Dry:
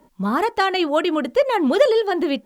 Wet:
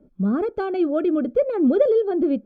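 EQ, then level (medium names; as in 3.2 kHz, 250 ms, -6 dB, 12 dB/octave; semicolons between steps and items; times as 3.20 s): boxcar filter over 46 samples; +3.0 dB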